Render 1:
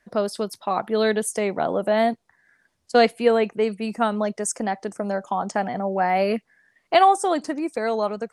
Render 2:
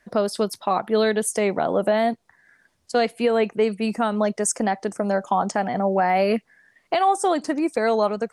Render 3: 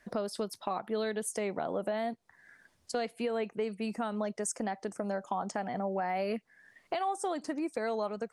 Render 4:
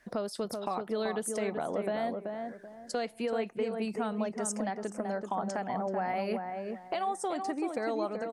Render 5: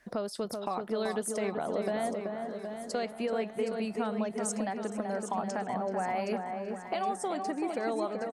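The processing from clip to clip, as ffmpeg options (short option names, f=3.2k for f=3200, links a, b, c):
-af "alimiter=limit=-14.5dB:level=0:latency=1:release=243,volume=4dB"
-af "acompressor=threshold=-38dB:ratio=2,volume=-1.5dB"
-filter_complex "[0:a]asplit=2[a][b];[b]adelay=382,lowpass=f=1.3k:p=1,volume=-4dB,asplit=2[c][d];[d]adelay=382,lowpass=f=1.3k:p=1,volume=0.31,asplit=2[e][f];[f]adelay=382,lowpass=f=1.3k:p=1,volume=0.31,asplit=2[g][h];[h]adelay=382,lowpass=f=1.3k:p=1,volume=0.31[i];[a][c][e][g][i]amix=inputs=5:normalize=0"
-af "aecho=1:1:769|1538|2307|3076|3845:0.299|0.149|0.0746|0.0373|0.0187"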